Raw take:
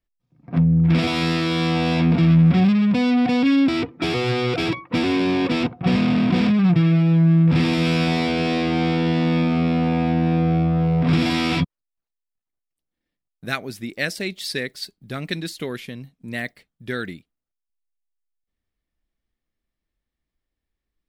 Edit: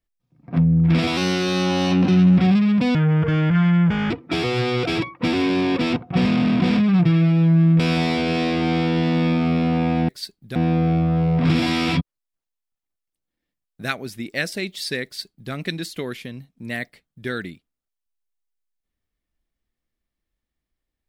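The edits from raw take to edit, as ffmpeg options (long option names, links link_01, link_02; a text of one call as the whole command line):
ffmpeg -i in.wav -filter_complex "[0:a]asplit=8[link_01][link_02][link_03][link_04][link_05][link_06][link_07][link_08];[link_01]atrim=end=1.174[link_09];[link_02]atrim=start=1.17:end=2.51,asetpts=PTS-STARTPTS,asetrate=48951,aresample=44100[link_10];[link_03]atrim=start=2.506:end=3.084[link_11];[link_04]atrim=start=3.08:end=3.81,asetpts=PTS-STARTPTS,asetrate=27783,aresample=44100[link_12];[link_05]atrim=start=3.806:end=7.502[link_13];[link_06]atrim=start=7.898:end=10.192[link_14];[link_07]atrim=start=14.678:end=15.152[link_15];[link_08]atrim=start=10.188[link_16];[link_09][link_10]acrossfade=duration=0.004:curve1=hsin:curve2=hsin[link_17];[link_17][link_11]acrossfade=duration=0.004:curve1=hsin:curve2=hsin[link_18];[link_18][link_12]acrossfade=duration=0.004:curve1=hsin:curve2=hsin[link_19];[link_19][link_13]acrossfade=duration=0.004:curve1=hsin:curve2=hsin[link_20];[link_20][link_14]acrossfade=duration=0.004:curve1=hsin:curve2=hsin[link_21];[link_21][link_15]acrossfade=duration=0.004:curve1=hsin:curve2=hsin[link_22];[link_22][link_16]acrossfade=duration=0.004:curve1=hsin:curve2=hsin" out.wav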